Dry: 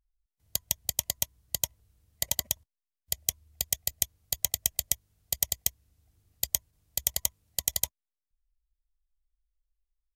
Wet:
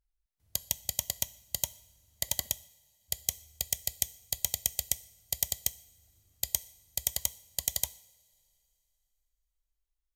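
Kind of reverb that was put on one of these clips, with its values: two-slope reverb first 0.66 s, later 3 s, from -18 dB, DRR 15 dB; gain -2.5 dB

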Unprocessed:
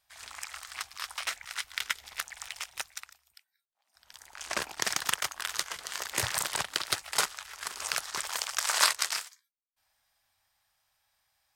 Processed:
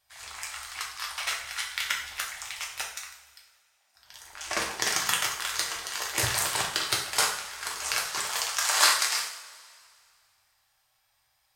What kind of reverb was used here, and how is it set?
two-slope reverb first 0.53 s, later 2.3 s, from -18 dB, DRR -2 dB

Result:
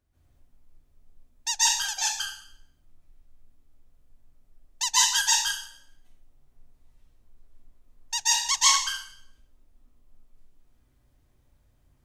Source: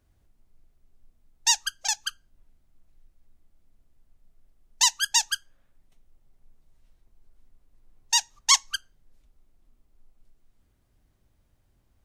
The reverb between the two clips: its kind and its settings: plate-style reverb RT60 0.64 s, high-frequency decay 0.95×, pre-delay 0.12 s, DRR -9.5 dB; gain -8 dB

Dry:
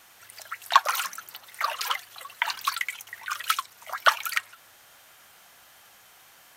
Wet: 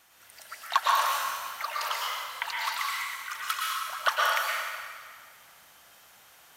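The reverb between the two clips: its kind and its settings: plate-style reverb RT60 1.9 s, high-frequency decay 0.85×, pre-delay 0.1 s, DRR -4.5 dB; gain -7 dB

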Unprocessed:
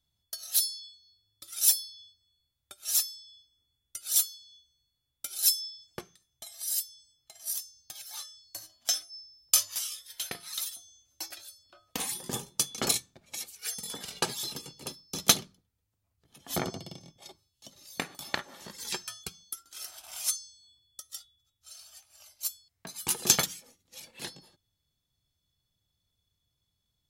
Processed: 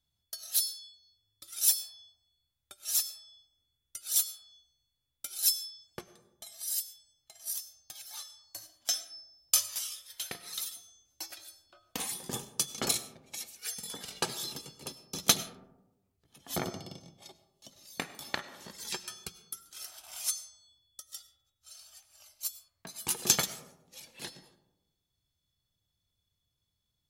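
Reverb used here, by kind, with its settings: digital reverb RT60 1 s, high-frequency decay 0.3×, pre-delay 60 ms, DRR 14.5 dB; gain -2.5 dB

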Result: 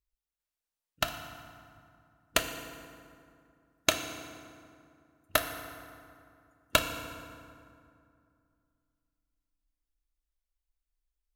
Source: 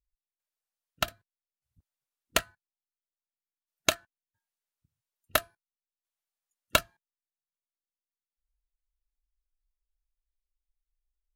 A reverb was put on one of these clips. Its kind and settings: FDN reverb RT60 2.4 s, low-frequency decay 1.25×, high-frequency decay 0.6×, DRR 5.5 dB; gain -1 dB

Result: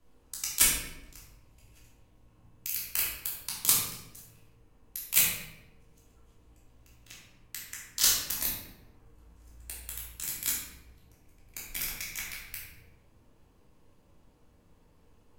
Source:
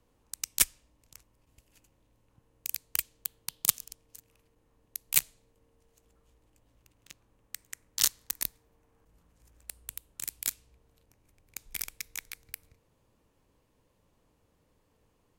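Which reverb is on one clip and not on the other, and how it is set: shoebox room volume 370 m³, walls mixed, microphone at 3 m; gain -3.5 dB

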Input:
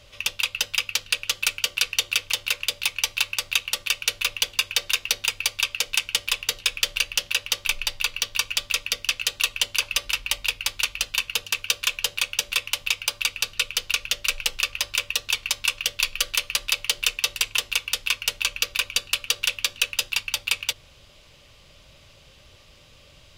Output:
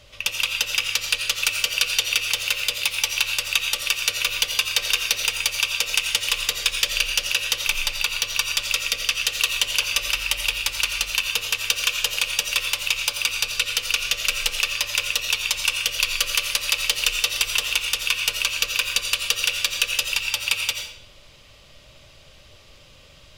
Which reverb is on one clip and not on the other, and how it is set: digital reverb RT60 0.67 s, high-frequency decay 0.9×, pre-delay 45 ms, DRR 3.5 dB; gain +1 dB

